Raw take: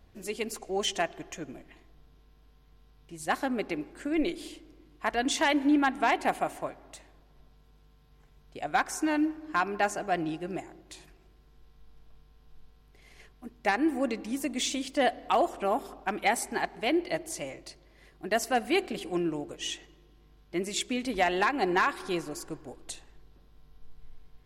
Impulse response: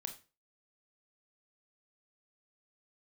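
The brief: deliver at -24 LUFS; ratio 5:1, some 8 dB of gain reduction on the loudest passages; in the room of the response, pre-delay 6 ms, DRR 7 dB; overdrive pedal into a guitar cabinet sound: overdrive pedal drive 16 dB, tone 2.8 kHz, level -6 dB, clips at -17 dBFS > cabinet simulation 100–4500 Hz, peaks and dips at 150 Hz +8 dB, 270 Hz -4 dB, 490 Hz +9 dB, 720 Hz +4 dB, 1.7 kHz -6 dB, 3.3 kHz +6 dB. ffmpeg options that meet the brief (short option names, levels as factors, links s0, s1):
-filter_complex "[0:a]acompressor=threshold=0.0316:ratio=5,asplit=2[s0][s1];[1:a]atrim=start_sample=2205,adelay=6[s2];[s1][s2]afir=irnorm=-1:irlink=0,volume=0.596[s3];[s0][s3]amix=inputs=2:normalize=0,asplit=2[s4][s5];[s5]highpass=f=720:p=1,volume=6.31,asoftclip=type=tanh:threshold=0.141[s6];[s4][s6]amix=inputs=2:normalize=0,lowpass=f=2800:p=1,volume=0.501,highpass=100,equalizer=f=150:t=q:w=4:g=8,equalizer=f=270:t=q:w=4:g=-4,equalizer=f=490:t=q:w=4:g=9,equalizer=f=720:t=q:w=4:g=4,equalizer=f=1700:t=q:w=4:g=-6,equalizer=f=3300:t=q:w=4:g=6,lowpass=f=4500:w=0.5412,lowpass=f=4500:w=1.3066,volume=1.68"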